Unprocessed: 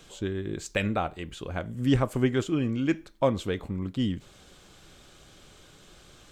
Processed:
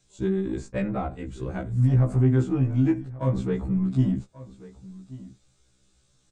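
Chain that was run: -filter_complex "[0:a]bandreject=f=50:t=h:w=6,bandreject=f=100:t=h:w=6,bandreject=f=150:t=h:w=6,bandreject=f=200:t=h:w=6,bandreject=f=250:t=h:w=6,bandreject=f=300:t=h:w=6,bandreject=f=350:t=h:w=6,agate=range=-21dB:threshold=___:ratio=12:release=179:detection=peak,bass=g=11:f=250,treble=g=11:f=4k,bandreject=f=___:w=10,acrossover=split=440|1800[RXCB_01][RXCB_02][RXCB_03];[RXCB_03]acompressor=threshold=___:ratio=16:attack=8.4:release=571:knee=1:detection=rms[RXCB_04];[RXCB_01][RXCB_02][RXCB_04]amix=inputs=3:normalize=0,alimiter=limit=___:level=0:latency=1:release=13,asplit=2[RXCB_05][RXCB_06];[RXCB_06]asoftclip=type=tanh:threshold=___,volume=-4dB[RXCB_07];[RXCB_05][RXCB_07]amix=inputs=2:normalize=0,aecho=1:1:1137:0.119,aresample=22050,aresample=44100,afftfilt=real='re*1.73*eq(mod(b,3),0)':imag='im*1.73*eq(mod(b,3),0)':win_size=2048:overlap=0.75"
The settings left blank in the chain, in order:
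-42dB, 3.1k, -49dB, -16dB, -25.5dB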